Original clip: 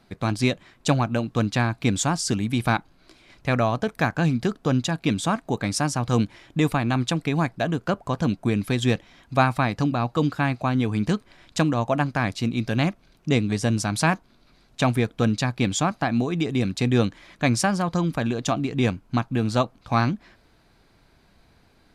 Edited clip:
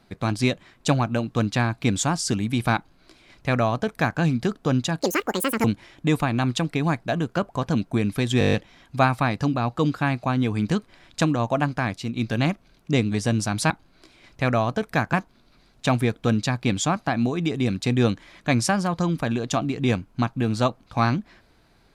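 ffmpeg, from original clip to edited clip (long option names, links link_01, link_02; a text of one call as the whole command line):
ffmpeg -i in.wav -filter_complex "[0:a]asplit=13[link_01][link_02][link_03][link_04][link_05][link_06][link_07][link_08][link_09][link_10][link_11][link_12][link_13];[link_01]atrim=end=5.014[link_14];[link_02]atrim=start=5.01:end=6.16,asetpts=PTS-STARTPTS,asetrate=80262,aresample=44100,atrim=end_sample=27865,asetpts=PTS-STARTPTS[link_15];[link_03]atrim=start=6.156:end=8.932[link_16];[link_04]atrim=start=8.908:end=8.932[link_17];[link_05]atrim=start=8.908:end=8.932[link_18];[link_06]atrim=start=8.908:end=8.932[link_19];[link_07]atrim=start=8.908:end=8.932[link_20];[link_08]atrim=start=8.908:end=8.932[link_21];[link_09]atrim=start=8.908:end=8.932[link_22];[link_10]atrim=start=8.908:end=12.54,asetpts=PTS-STARTPTS,afade=type=out:start_time=3.182:duration=0.45:silence=0.501187[link_23];[link_11]atrim=start=12.54:end=14.082,asetpts=PTS-STARTPTS,afade=type=in:duration=0.004:curve=hsin:silence=0.501187[link_24];[link_12]atrim=start=2.758:end=4.192[link_25];[link_13]atrim=start=14.078[link_26];[link_14][link_15]acrossfade=duration=0.004:curve1=hsin:curve2=hsin[link_27];[link_27][link_16]acrossfade=duration=0.004:curve1=hsin:curve2=hsin[link_28];[link_28][link_17]acrossfade=duration=0.004:curve1=hsin:curve2=hsin[link_29];[link_29][link_18]acrossfade=duration=0.004:curve1=hsin:curve2=hsin[link_30];[link_30][link_19]acrossfade=duration=0.004:curve1=hsin:curve2=hsin[link_31];[link_31][link_20]acrossfade=duration=0.004:curve1=hsin:curve2=hsin[link_32];[link_32][link_21]acrossfade=duration=0.004:curve1=hsin:curve2=hsin[link_33];[link_33][link_22]acrossfade=duration=0.004:curve1=hsin:curve2=hsin[link_34];[link_23][link_24]concat=n=2:v=0:a=1[link_35];[link_34][link_35]acrossfade=duration=0.004:curve1=hsin:curve2=hsin[link_36];[link_36][link_25]acrossfade=duration=0.004:curve1=hsin:curve2=hsin[link_37];[link_37][link_26]acrossfade=duration=0.004:curve1=hsin:curve2=hsin" out.wav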